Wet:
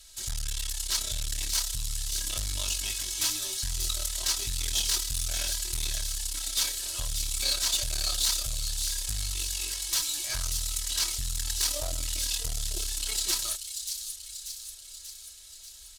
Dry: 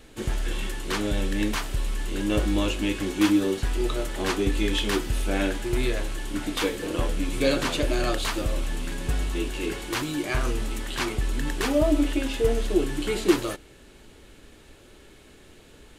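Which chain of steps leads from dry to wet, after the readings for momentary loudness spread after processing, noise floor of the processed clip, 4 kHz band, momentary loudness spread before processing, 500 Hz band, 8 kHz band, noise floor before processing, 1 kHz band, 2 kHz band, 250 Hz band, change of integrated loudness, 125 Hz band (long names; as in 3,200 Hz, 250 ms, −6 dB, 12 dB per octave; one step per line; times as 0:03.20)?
10 LU, −47 dBFS, +4.0 dB, 8 LU, −21.5 dB, +10.5 dB, −51 dBFS, −12.5 dB, −9.0 dB, −27.5 dB, −2.0 dB, −8.0 dB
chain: guitar amp tone stack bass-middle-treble 10-0-10
comb filter 3.1 ms, depth 82%
tube saturation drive 29 dB, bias 0.7
high shelf with overshoot 3,400 Hz +10.5 dB, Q 1.5
delay with a high-pass on its return 587 ms, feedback 58%, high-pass 4,100 Hz, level −5.5 dB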